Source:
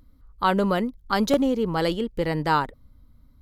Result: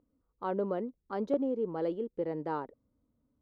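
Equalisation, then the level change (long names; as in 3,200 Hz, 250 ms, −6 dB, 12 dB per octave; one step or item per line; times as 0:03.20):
resonant band-pass 420 Hz, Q 1.4
−6.0 dB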